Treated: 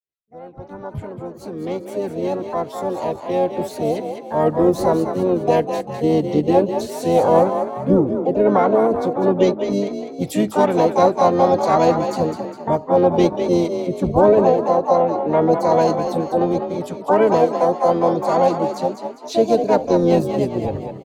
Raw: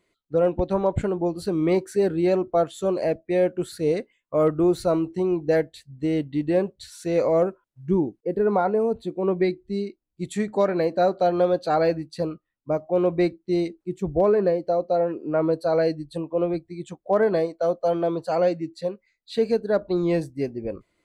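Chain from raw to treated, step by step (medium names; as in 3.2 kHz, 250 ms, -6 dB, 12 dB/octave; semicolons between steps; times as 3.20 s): fade-in on the opening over 6.45 s; peaking EQ 98 Hz +13.5 dB 0.48 oct; frequency-shifting echo 202 ms, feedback 42%, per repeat +35 Hz, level -8 dB; harmony voices -7 st -18 dB, +4 st -12 dB, +7 st -4 dB; dynamic bell 1.9 kHz, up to -6 dB, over -38 dBFS, Q 1.2; trim +4.5 dB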